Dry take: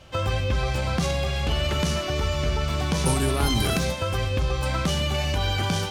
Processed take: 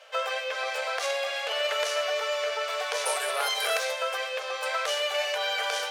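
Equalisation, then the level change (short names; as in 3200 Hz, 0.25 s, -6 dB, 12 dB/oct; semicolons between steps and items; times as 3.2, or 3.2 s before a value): rippled Chebyshev high-pass 440 Hz, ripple 6 dB; +3.5 dB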